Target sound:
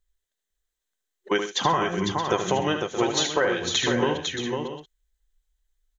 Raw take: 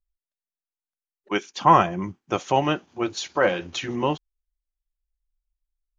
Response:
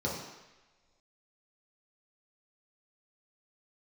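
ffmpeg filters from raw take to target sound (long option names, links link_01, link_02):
-filter_complex "[0:a]superequalizer=7b=2:11b=2:13b=2:15b=2,acompressor=threshold=-27dB:ratio=6,asplit=2[link_01][link_02];[link_02]aecho=0:1:76|134|502|624|683:0.422|0.141|0.531|0.266|0.168[link_03];[link_01][link_03]amix=inputs=2:normalize=0,volume=6dB"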